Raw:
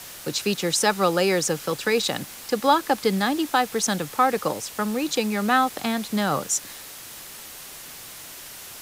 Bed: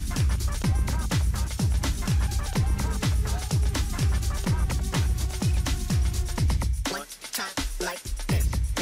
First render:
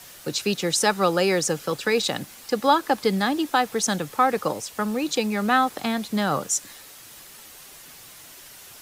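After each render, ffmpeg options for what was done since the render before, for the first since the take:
ffmpeg -i in.wav -af "afftdn=noise_reduction=6:noise_floor=-41" out.wav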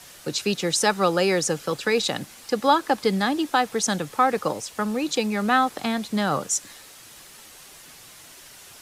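ffmpeg -i in.wav -af "lowpass=12000" out.wav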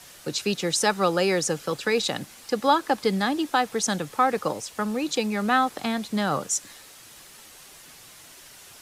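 ffmpeg -i in.wav -af "volume=-1.5dB" out.wav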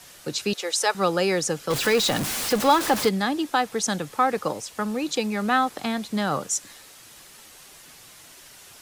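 ffmpeg -i in.wav -filter_complex "[0:a]asettb=1/sr,asplit=3[link_01][link_02][link_03];[link_01]atrim=end=0.534[link_04];[link_02]atrim=start=0.53:end=0.95,asetpts=PTS-STARTPTS,afade=type=in:duration=0.004:curve=qsin,afade=type=out:start_time=0.416:duration=0.004:curve=qsin,highpass=frequency=420:width=0.5412,highpass=frequency=420:width=1.3066[link_05];[link_03]atrim=start=0.946[link_06];[link_04][link_05]acrossfade=duration=0.004:curve1=hsin:curve2=qsin[link_07];[link_07][link_06]acrossfade=duration=0.004:curve1=qsin:curve2=hsin,asettb=1/sr,asplit=3[link_08][link_09][link_10];[link_08]atrim=end=1.704[link_11];[link_09]atrim=start=1.7:end=3.09,asetpts=PTS-STARTPTS,afade=type=in:duration=0.004:curve=qsin,afade=type=out:start_time=1.386:duration=0.004:curve=qsin,aeval=exprs='val(0)+0.5*0.0708*sgn(val(0))':channel_layout=same[link_12];[link_10]atrim=start=3.086[link_13];[link_11][link_12]acrossfade=duration=0.004:curve1=hsin:curve2=qsin[link_14];[link_14][link_13]acrossfade=duration=0.004:curve1=qsin:curve2=hsin" out.wav

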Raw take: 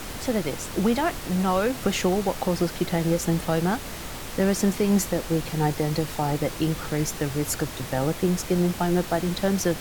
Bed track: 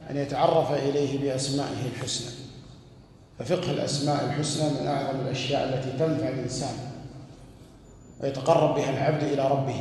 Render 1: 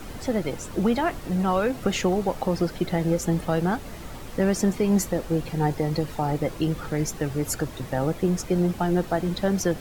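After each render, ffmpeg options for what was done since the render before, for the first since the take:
ffmpeg -i in.wav -af "afftdn=noise_reduction=9:noise_floor=-36" out.wav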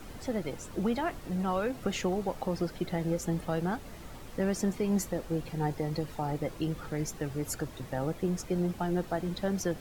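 ffmpeg -i in.wav -af "volume=-7.5dB" out.wav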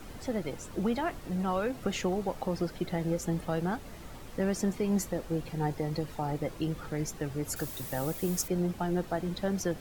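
ffmpeg -i in.wav -filter_complex "[0:a]asettb=1/sr,asplit=3[link_01][link_02][link_03];[link_01]atrim=end=7.564[link_04];[link_02]atrim=start=7.56:end=8.48,asetpts=PTS-STARTPTS,afade=type=in:duration=0.004:curve=qsin,afade=type=out:start_time=0.916:duration=0.004:curve=qsin,aemphasis=mode=production:type=75fm[link_05];[link_03]atrim=start=8.476[link_06];[link_04][link_05]acrossfade=duration=0.004:curve1=hsin:curve2=qsin[link_07];[link_07][link_06]acrossfade=duration=0.004:curve1=qsin:curve2=hsin" out.wav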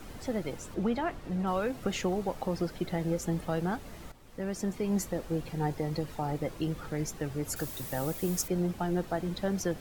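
ffmpeg -i in.wav -filter_complex "[0:a]asettb=1/sr,asplit=3[link_01][link_02][link_03];[link_01]atrim=end=0.744[link_04];[link_02]atrim=start=0.74:end=1.47,asetpts=PTS-STARTPTS,afade=type=in:duration=0.004:curve=qsin,afade=type=out:start_time=0.726:duration=0.004:curve=qsin,lowpass=frequency=4000:poles=1[link_05];[link_03]atrim=start=1.466[link_06];[link_04][link_05]acrossfade=duration=0.004:curve1=hsin:curve2=qsin[link_07];[link_07][link_06]acrossfade=duration=0.004:curve1=qsin:curve2=hsin,asplit=2[link_08][link_09];[link_08]atrim=end=4.12,asetpts=PTS-STARTPTS,afade=type=out:start_time=4.116:duration=0.004:curve=hsin:silence=0.211349[link_10];[link_09]atrim=start=4.12,asetpts=PTS-STARTPTS,afade=type=in:duration=1.22:curve=qsin:silence=0.211349[link_11];[link_10][link_11]concat=n=2:v=0:a=1" out.wav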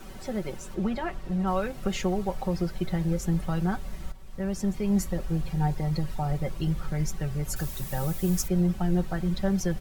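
ffmpeg -i in.wav -af "asubboost=boost=4:cutoff=140,aecho=1:1:5.3:0.65" out.wav

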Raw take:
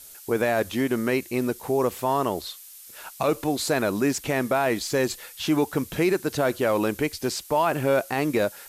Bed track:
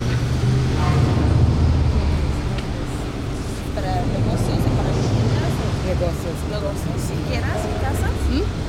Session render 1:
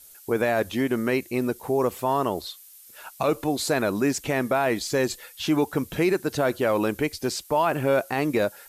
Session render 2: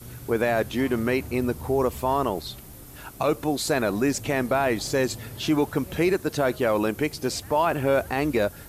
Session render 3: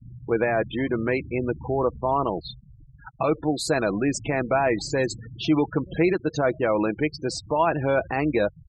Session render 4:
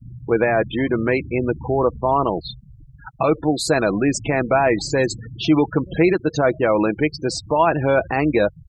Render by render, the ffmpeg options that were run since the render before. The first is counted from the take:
ffmpeg -i in.wav -af "afftdn=noise_reduction=6:noise_floor=-46" out.wav
ffmpeg -i in.wav -i bed.wav -filter_complex "[1:a]volume=-21dB[link_01];[0:a][link_01]amix=inputs=2:normalize=0" out.wav
ffmpeg -i in.wav -af "afftfilt=real='re*gte(hypot(re,im),0.0355)':imag='im*gte(hypot(re,im),0.0355)':win_size=1024:overlap=0.75,aecho=1:1:6.1:0.34" out.wav
ffmpeg -i in.wav -af "volume=5dB" out.wav

